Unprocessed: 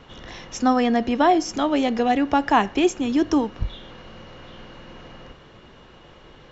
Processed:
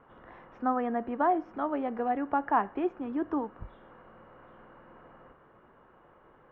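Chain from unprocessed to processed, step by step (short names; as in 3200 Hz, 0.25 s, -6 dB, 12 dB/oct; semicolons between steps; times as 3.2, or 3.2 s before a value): ladder low-pass 1700 Hz, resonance 30%; low shelf 170 Hz -10 dB; gain -2.5 dB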